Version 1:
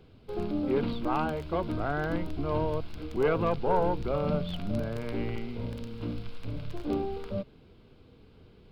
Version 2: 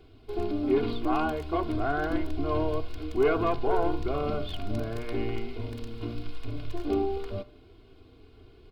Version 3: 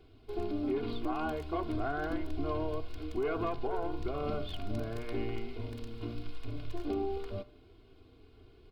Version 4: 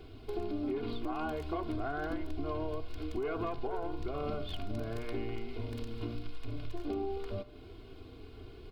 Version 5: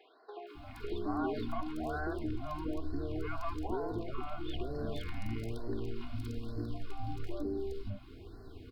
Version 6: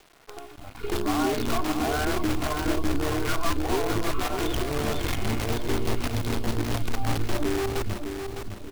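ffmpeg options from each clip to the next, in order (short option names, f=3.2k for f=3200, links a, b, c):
-af "aecho=1:1:2.8:0.82,bandreject=f=59.75:t=h:w=4,bandreject=f=119.5:t=h:w=4,bandreject=f=179.25:t=h:w=4,bandreject=f=239:t=h:w=4,bandreject=f=298.75:t=h:w=4,bandreject=f=358.5:t=h:w=4,bandreject=f=418.25:t=h:w=4,bandreject=f=478:t=h:w=4,bandreject=f=537.75:t=h:w=4,bandreject=f=597.5:t=h:w=4,bandreject=f=657.25:t=h:w=4,bandreject=f=717:t=h:w=4,bandreject=f=776.75:t=h:w=4,bandreject=f=836.5:t=h:w=4,bandreject=f=896.25:t=h:w=4,bandreject=f=956:t=h:w=4,bandreject=f=1.01575k:t=h:w=4,bandreject=f=1.0755k:t=h:w=4,bandreject=f=1.13525k:t=h:w=4,bandreject=f=1.195k:t=h:w=4,bandreject=f=1.25475k:t=h:w=4,bandreject=f=1.3145k:t=h:w=4,bandreject=f=1.37425k:t=h:w=4,bandreject=f=1.434k:t=h:w=4,bandreject=f=1.49375k:t=h:w=4,bandreject=f=1.5535k:t=h:w=4,bandreject=f=1.61325k:t=h:w=4,bandreject=f=1.673k:t=h:w=4,bandreject=f=1.73275k:t=h:w=4,bandreject=f=1.7925k:t=h:w=4,bandreject=f=1.85225k:t=h:w=4,bandreject=f=1.912k:t=h:w=4"
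-af "alimiter=limit=-19.5dB:level=0:latency=1:release=183,volume=-4.5dB"
-af "acompressor=threshold=-46dB:ratio=2.5,volume=8.5dB"
-filter_complex "[0:a]acrossover=split=520|3600[a][b][c];[c]adelay=470[d];[a]adelay=550[e];[e][b][d]amix=inputs=3:normalize=0,afftfilt=real='re*(1-between(b*sr/1024,410*pow(2900/410,0.5+0.5*sin(2*PI*1.1*pts/sr))/1.41,410*pow(2900/410,0.5+0.5*sin(2*PI*1.1*pts/sr))*1.41))':imag='im*(1-between(b*sr/1024,410*pow(2900/410,0.5+0.5*sin(2*PI*1.1*pts/sr))/1.41,410*pow(2900/410,0.5+0.5*sin(2*PI*1.1*pts/sr))*1.41))':win_size=1024:overlap=0.75,volume=1dB"
-af "acrusher=bits=7:dc=4:mix=0:aa=0.000001,aecho=1:1:607|1214|1821|2428:0.447|0.165|0.0612|0.0226,volume=9dB"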